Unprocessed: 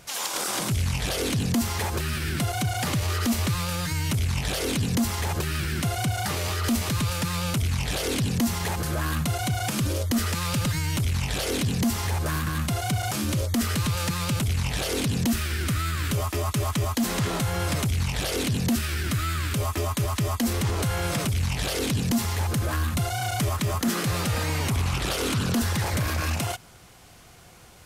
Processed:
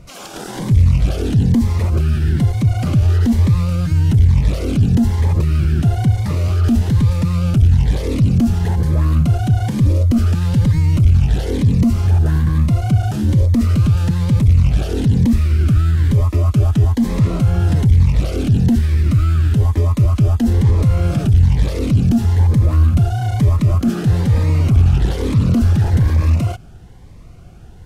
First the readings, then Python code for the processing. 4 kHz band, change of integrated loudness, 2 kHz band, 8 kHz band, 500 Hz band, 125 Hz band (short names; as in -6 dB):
-5.0 dB, +11.0 dB, -3.5 dB, n/a, +4.5 dB, +14.0 dB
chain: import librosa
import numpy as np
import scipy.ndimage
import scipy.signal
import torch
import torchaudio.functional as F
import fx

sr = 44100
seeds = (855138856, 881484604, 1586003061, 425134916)

y = fx.tilt_eq(x, sr, slope=-3.5)
y = fx.notch_cascade(y, sr, direction='rising', hz=1.1)
y = y * 10.0 ** (2.5 / 20.0)